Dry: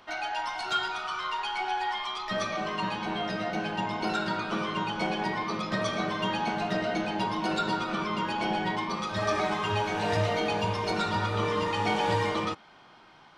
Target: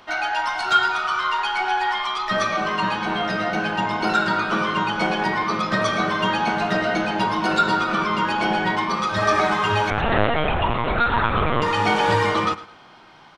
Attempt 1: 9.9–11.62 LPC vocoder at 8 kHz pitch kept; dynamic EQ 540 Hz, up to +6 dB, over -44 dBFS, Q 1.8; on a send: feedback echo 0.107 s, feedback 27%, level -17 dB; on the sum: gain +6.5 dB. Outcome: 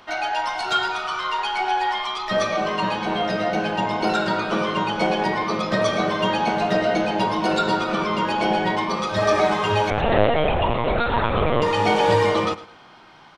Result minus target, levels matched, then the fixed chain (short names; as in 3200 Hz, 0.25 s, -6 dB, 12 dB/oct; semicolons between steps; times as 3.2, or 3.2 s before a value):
500 Hz band +4.5 dB
9.9–11.62 LPC vocoder at 8 kHz pitch kept; dynamic EQ 1400 Hz, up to +6 dB, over -44 dBFS, Q 1.8; on a send: feedback echo 0.107 s, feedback 27%, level -17 dB; on the sum: gain +6.5 dB